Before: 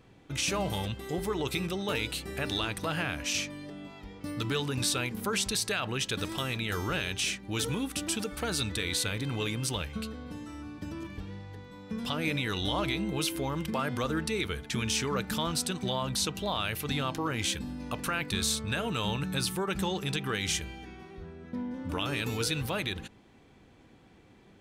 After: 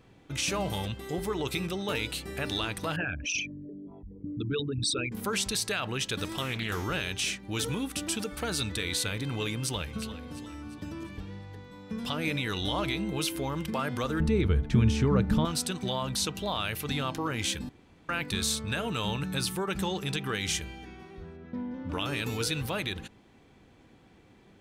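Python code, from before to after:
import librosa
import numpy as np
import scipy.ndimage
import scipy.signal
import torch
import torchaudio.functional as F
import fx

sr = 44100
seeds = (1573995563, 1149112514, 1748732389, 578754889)

y = fx.envelope_sharpen(x, sr, power=3.0, at=(2.96, 5.12))
y = fx.doppler_dist(y, sr, depth_ms=0.23, at=(6.41, 6.84))
y = fx.echo_throw(y, sr, start_s=9.52, length_s=0.53, ms=350, feedback_pct=45, wet_db=-13.0)
y = fx.tilt_eq(y, sr, slope=-4.0, at=(14.2, 15.45))
y = fx.air_absorb(y, sr, metres=130.0, at=(21.36, 21.92), fade=0.02)
y = fx.edit(y, sr, fx.room_tone_fill(start_s=17.69, length_s=0.4), tone=tone)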